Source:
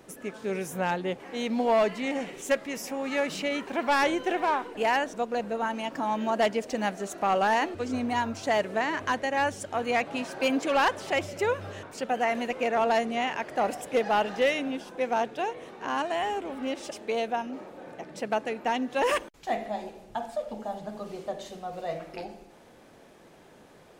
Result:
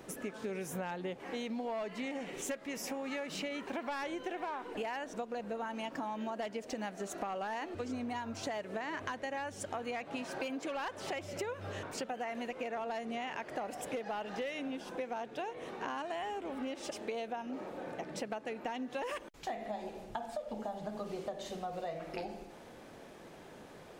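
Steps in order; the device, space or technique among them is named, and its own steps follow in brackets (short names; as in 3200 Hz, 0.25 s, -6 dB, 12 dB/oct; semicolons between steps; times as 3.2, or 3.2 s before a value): bell 11000 Hz -2 dB 1.4 oct; serial compression, leveller first (compressor 2.5:1, threshold -27 dBFS, peak gain reduction 5 dB; compressor 6:1, threshold -38 dBFS, peak gain reduction 12.5 dB); gain +1.5 dB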